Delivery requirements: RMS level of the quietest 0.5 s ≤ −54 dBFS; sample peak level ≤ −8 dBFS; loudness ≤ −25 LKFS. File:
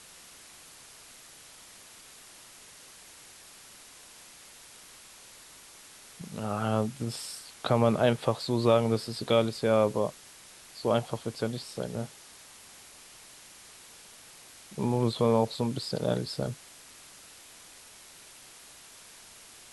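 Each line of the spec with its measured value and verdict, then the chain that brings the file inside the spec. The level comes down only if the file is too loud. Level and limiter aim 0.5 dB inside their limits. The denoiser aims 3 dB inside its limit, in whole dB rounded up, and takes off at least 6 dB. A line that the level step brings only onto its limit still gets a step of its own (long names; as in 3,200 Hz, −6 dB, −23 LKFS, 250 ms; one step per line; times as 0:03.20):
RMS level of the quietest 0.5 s −52 dBFS: out of spec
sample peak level −9.0 dBFS: in spec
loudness −29.0 LKFS: in spec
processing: broadband denoise 6 dB, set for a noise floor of −52 dBFS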